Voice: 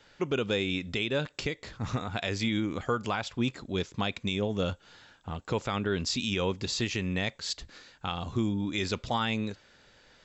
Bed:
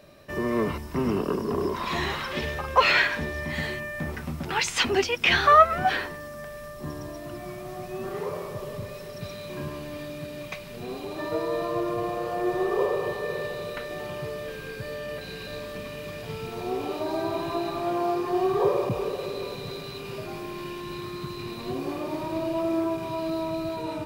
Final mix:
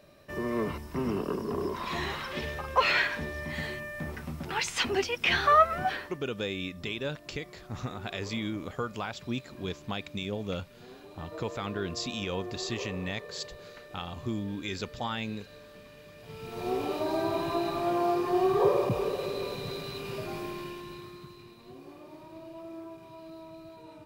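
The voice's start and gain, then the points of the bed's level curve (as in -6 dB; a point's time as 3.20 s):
5.90 s, -4.5 dB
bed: 5.82 s -5 dB
6.22 s -14.5 dB
16.13 s -14.5 dB
16.68 s -1 dB
20.46 s -1 dB
21.56 s -17 dB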